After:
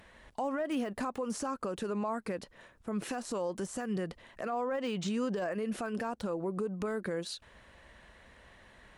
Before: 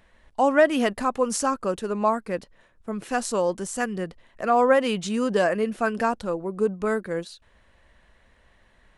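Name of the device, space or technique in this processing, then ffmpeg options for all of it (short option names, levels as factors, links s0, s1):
podcast mastering chain: -filter_complex "[0:a]asettb=1/sr,asplit=3[s0][s1][s2];[s0]atrim=end=4.524[s3];[s1]atrim=start=4.52:end=5.52,asetpts=PTS-STARTPTS,afade=t=in:d=0.004:c=qsin,afade=t=out:st=0.996:d=0.004:c=qsin,lowpass=f=8300:w=0.5412,lowpass=f=8300:w=1.3066[s4];[s2]atrim=start=5.516[s5];[s3][s4]acrossfade=d=0.004:c1=hsin:c2=qsin[s6];[s6][s5]acrossfade=d=0.004:c1=qsin:c2=hsin,highpass=f=67:p=1,deesser=0.95,acompressor=threshold=0.0398:ratio=3,alimiter=level_in=2:limit=0.0631:level=0:latency=1:release=123,volume=0.501,volume=1.68" -ar 48000 -c:a libmp3lame -b:a 112k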